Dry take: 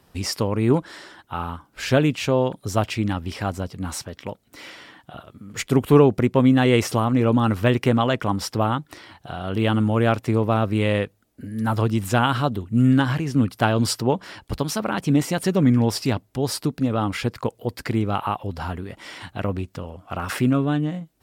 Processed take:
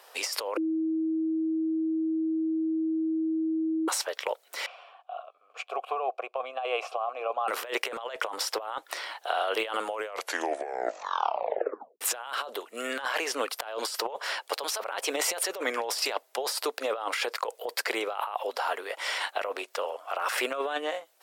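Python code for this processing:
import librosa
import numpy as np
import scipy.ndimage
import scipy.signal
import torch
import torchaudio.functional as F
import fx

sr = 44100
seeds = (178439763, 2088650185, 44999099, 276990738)

y = fx.vowel_filter(x, sr, vowel='a', at=(4.66, 7.48))
y = fx.edit(y, sr, fx.bleep(start_s=0.57, length_s=3.31, hz=320.0, db=-11.5),
    fx.tape_stop(start_s=9.87, length_s=2.14), tone=tone)
y = scipy.signal.sosfilt(scipy.signal.butter(6, 480.0, 'highpass', fs=sr, output='sos'), y)
y = fx.over_compress(y, sr, threshold_db=-34.0, ratio=-1.0)
y = F.gain(torch.from_numpy(y), 3.5).numpy()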